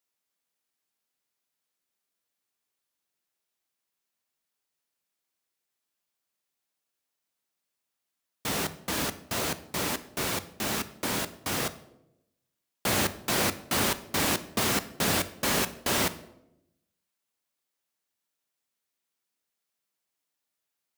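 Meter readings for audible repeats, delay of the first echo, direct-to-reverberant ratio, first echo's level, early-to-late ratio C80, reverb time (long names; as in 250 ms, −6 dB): no echo audible, no echo audible, 11.5 dB, no echo audible, 18.5 dB, 0.85 s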